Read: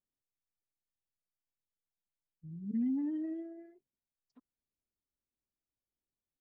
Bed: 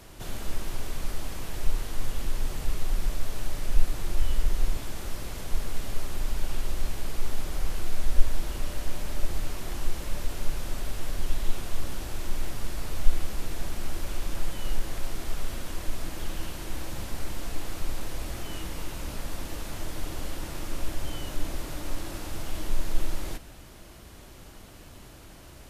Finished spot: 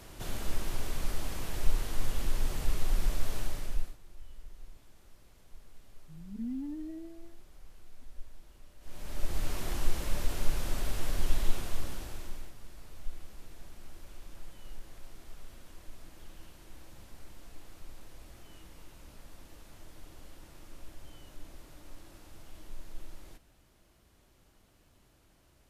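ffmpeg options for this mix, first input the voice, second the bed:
-filter_complex "[0:a]adelay=3650,volume=0.596[s0];[1:a]volume=12.6,afade=t=out:st=3.36:d=0.61:silence=0.0749894,afade=t=in:st=8.8:d=0.75:silence=0.0668344,afade=t=out:st=11.37:d=1.16:silence=0.149624[s1];[s0][s1]amix=inputs=2:normalize=0"

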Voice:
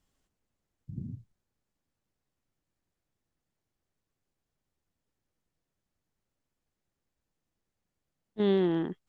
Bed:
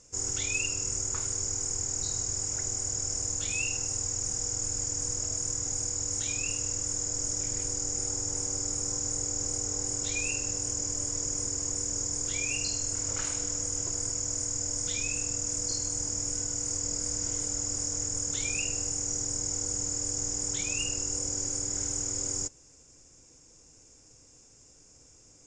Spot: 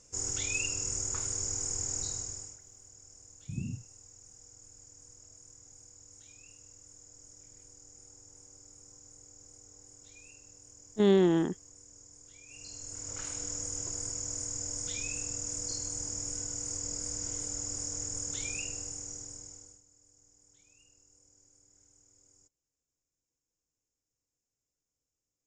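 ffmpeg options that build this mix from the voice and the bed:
-filter_complex "[0:a]adelay=2600,volume=1.33[s0];[1:a]volume=5.96,afade=t=out:st=1.97:d=0.62:silence=0.0944061,afade=t=in:st=12.46:d=1.05:silence=0.125893,afade=t=out:st=18.41:d=1.41:silence=0.0421697[s1];[s0][s1]amix=inputs=2:normalize=0"

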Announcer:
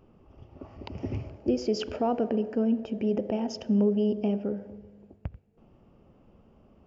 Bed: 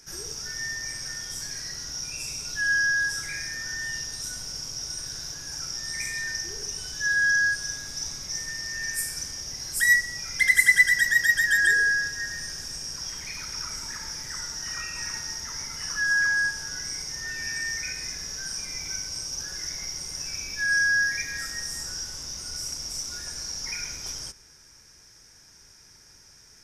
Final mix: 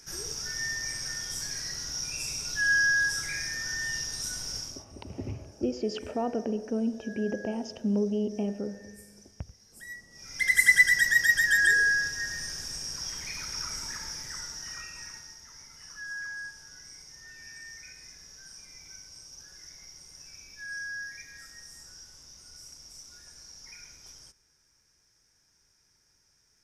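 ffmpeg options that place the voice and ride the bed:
-filter_complex "[0:a]adelay=4150,volume=0.668[s0];[1:a]volume=12.6,afade=t=out:st=4.56:d=0.29:silence=0.0668344,afade=t=in:st=10.1:d=0.58:silence=0.0749894,afade=t=out:st=13.83:d=1.53:silence=0.211349[s1];[s0][s1]amix=inputs=2:normalize=0"

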